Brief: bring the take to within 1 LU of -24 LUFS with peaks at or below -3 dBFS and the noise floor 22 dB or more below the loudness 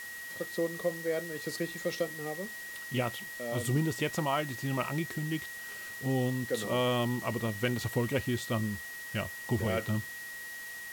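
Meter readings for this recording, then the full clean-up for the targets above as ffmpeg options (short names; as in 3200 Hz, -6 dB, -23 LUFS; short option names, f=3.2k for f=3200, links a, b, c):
steady tone 1900 Hz; tone level -41 dBFS; noise floor -43 dBFS; noise floor target -56 dBFS; loudness -33.5 LUFS; peak -18.0 dBFS; loudness target -24.0 LUFS
-> -af "bandreject=f=1.9k:w=30"
-af "afftdn=nr=13:nf=-43"
-af "volume=9.5dB"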